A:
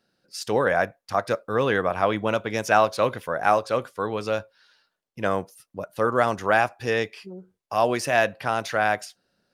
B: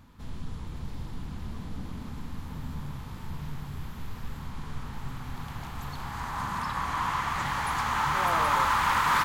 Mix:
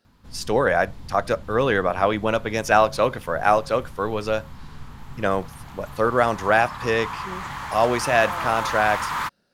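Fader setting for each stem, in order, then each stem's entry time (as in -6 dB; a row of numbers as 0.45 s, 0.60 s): +2.0 dB, -2.5 dB; 0.00 s, 0.05 s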